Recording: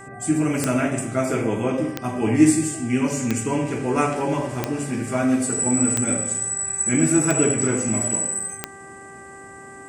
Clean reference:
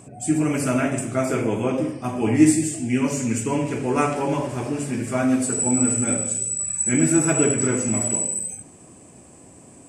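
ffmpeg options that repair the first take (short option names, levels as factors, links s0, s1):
-af "adeclick=t=4,bandreject=f=392:t=h:w=4,bandreject=f=784:t=h:w=4,bandreject=f=1176:t=h:w=4,bandreject=f=1568:t=h:w=4,bandreject=f=1960:t=h:w=4"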